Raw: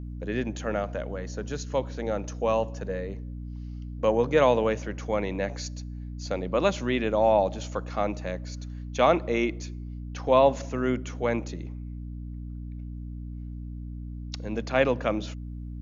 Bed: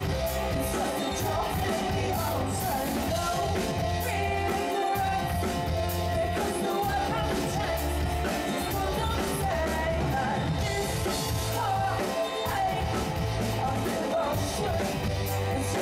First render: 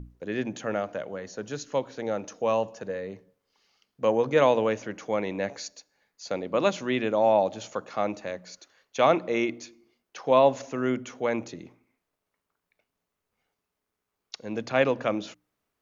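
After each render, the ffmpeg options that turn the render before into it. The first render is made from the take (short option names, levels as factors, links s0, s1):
-af "bandreject=f=60:t=h:w=6,bandreject=f=120:t=h:w=6,bandreject=f=180:t=h:w=6,bandreject=f=240:t=h:w=6,bandreject=f=300:t=h:w=6"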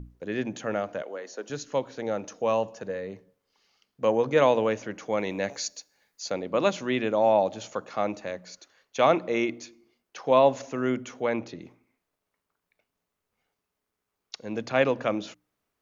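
-filter_complex "[0:a]asettb=1/sr,asplit=3[s0][s1][s2];[s0]atrim=end=1.024[s3];[s1]atrim=start=1.02:end=1.5,asetpts=PTS-STARTPTS,afade=t=in:d=0.004:c=qsin,afade=t=out:st=0.476:d=0.004:c=qsin,highpass=f=290:w=0.5412,highpass=f=290:w=1.3066[s4];[s2]atrim=start=1.496[s5];[s3][s4]acrossfade=d=0.004:c1=hsin:c2=qsin[s6];[s6][s5]acrossfade=d=0.004:c1=qsin:c2=hsin,asettb=1/sr,asplit=3[s7][s8][s9];[s7]atrim=end=5.174[s10];[s8]atrim=start=5.17:end=6.3,asetpts=PTS-STARTPTS,afade=t=in:d=0.004:c=qsin,afade=t=out:st=1.126:d=0.004:c=qsin,highshelf=f=4000:g=9[s11];[s9]atrim=start=6.296[s12];[s10][s11]acrossfade=d=0.004:c1=hsin:c2=qsin[s13];[s13][s12]acrossfade=d=0.004:c1=qsin:c2=hsin,asettb=1/sr,asplit=3[s14][s15][s16];[s14]atrim=end=11.224[s17];[s15]atrim=start=11.22:end=11.62,asetpts=PTS-STARTPTS,afade=t=in:d=0.004:c=qsin,afade=t=out:st=0.396:d=0.004:c=qsin,lowpass=f=5500:w=0.5412,lowpass=f=5500:w=1.3066[s18];[s16]atrim=start=11.616[s19];[s17][s18]acrossfade=d=0.004:c1=hsin:c2=qsin[s20];[s20][s19]acrossfade=d=0.004:c1=qsin:c2=hsin"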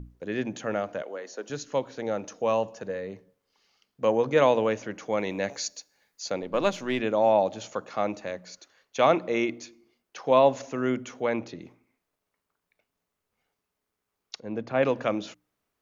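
-filter_complex "[0:a]asettb=1/sr,asplit=3[s0][s1][s2];[s0]atrim=end=6.424[s3];[s1]atrim=start=6.42:end=7.01,asetpts=PTS-STARTPTS,afade=t=in:d=0.004:c=qsin,afade=t=out:st=0.586:d=0.004:c=qsin,aeval=exprs='if(lt(val(0),0),0.708*val(0),val(0))':c=same[s4];[s2]atrim=start=7.006[s5];[s3][s4]acrossfade=d=0.004:c1=hsin:c2=qsin[s6];[s6][s5]acrossfade=d=0.004:c1=qsin:c2=hsin,asettb=1/sr,asplit=3[s7][s8][s9];[s7]atrim=end=14.404[s10];[s8]atrim=start=14.4:end=14.83,asetpts=PTS-STARTPTS,afade=t=in:d=0.004:c=qsin,afade=t=out:st=0.426:d=0.004:c=qsin,lowpass=f=1200:p=1[s11];[s9]atrim=start=14.826[s12];[s10][s11]acrossfade=d=0.004:c1=hsin:c2=qsin[s13];[s13][s12]acrossfade=d=0.004:c1=qsin:c2=hsin"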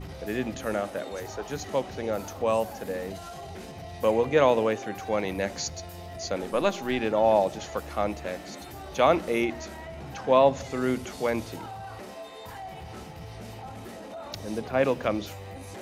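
-filter_complex "[1:a]volume=0.237[s0];[0:a][s0]amix=inputs=2:normalize=0"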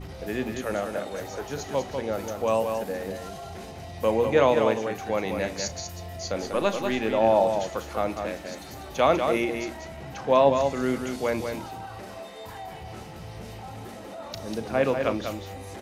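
-filter_complex "[0:a]asplit=2[s0][s1];[s1]adelay=36,volume=0.2[s2];[s0][s2]amix=inputs=2:normalize=0,aecho=1:1:195:0.501"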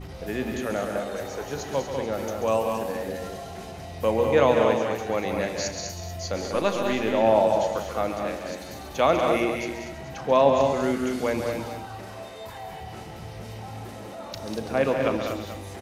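-af "aecho=1:1:137|239.1:0.355|0.398"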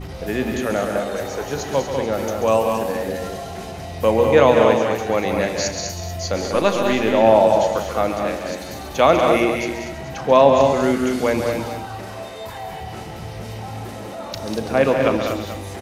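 -af "volume=2.11,alimiter=limit=0.891:level=0:latency=1"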